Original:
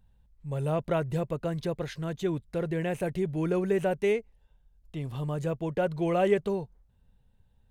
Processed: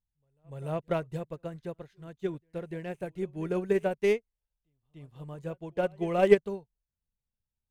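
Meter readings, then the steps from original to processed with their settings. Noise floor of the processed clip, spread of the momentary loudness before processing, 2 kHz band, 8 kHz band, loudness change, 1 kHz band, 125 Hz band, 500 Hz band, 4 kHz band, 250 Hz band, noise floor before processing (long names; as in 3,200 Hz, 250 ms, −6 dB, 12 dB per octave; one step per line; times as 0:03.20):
below −85 dBFS, 8 LU, −0.5 dB, can't be measured, −0.5 dB, −2.0 dB, −7.0 dB, 0.0 dB, −2.5 dB, −3.5 dB, −65 dBFS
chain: stylus tracing distortion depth 0.03 ms
backwards echo 293 ms −17.5 dB
expander for the loud parts 2.5 to 1, over −41 dBFS
level +6.5 dB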